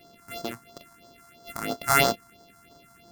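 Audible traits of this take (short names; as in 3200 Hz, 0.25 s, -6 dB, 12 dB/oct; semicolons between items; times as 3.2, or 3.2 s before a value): a buzz of ramps at a fixed pitch in blocks of 64 samples; phasing stages 4, 3 Hz, lowest notch 470–2400 Hz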